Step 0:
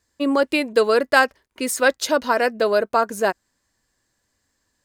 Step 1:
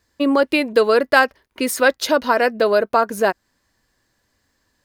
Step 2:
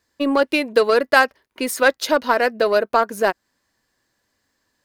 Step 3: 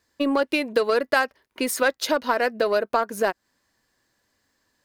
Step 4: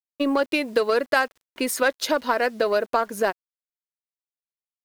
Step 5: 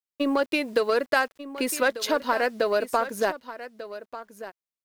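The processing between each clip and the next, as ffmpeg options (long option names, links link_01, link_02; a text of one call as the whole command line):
ffmpeg -i in.wav -filter_complex "[0:a]equalizer=frequency=7600:width_type=o:width=0.67:gain=-7.5,asplit=2[link_01][link_02];[link_02]acompressor=threshold=-24dB:ratio=6,volume=-1dB[link_03];[link_01][link_03]amix=inputs=2:normalize=0" out.wav
ffmpeg -i in.wav -af "lowshelf=frequency=100:gain=-10.5,aeval=exprs='0.841*(cos(1*acos(clip(val(0)/0.841,-1,1)))-cos(1*PI/2))+0.0299*(cos(7*acos(clip(val(0)/0.841,-1,1)))-cos(7*PI/2))':channel_layout=same" out.wav
ffmpeg -i in.wav -af "acompressor=threshold=-21dB:ratio=2" out.wav
ffmpeg -i in.wav -af "acrusher=bits=8:mix=0:aa=0.000001" out.wav
ffmpeg -i in.wav -af "aecho=1:1:1193:0.2,volume=-2dB" out.wav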